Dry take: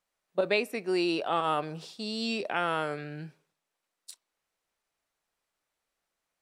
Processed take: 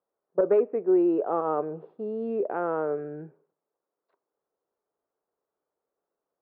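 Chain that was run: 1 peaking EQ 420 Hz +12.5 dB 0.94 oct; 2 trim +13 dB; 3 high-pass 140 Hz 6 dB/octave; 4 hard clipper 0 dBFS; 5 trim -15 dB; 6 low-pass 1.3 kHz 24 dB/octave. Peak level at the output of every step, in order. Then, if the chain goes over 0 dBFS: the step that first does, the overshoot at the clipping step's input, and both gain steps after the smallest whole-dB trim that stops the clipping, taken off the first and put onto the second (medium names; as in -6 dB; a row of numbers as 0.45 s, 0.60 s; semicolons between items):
-8.0 dBFS, +5.0 dBFS, +4.5 dBFS, 0.0 dBFS, -15.0 dBFS, -14.0 dBFS; step 2, 4.5 dB; step 2 +8 dB, step 5 -10 dB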